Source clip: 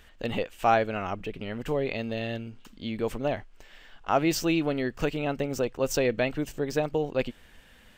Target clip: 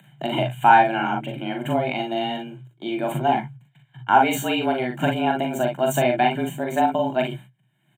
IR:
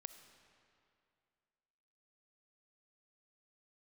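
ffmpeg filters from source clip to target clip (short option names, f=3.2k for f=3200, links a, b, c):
-filter_complex "[0:a]agate=range=-34dB:threshold=-44dB:ratio=16:detection=peak,aecho=1:1:1.4:0.8,acompressor=mode=upward:threshold=-37dB:ratio=2.5,afreqshift=120,asuperstop=centerf=5100:order=4:qfactor=1.3,asplit=2[a][b];[b]aecho=0:1:41|56:0.631|0.355[c];[a][c]amix=inputs=2:normalize=0,volume=3.5dB"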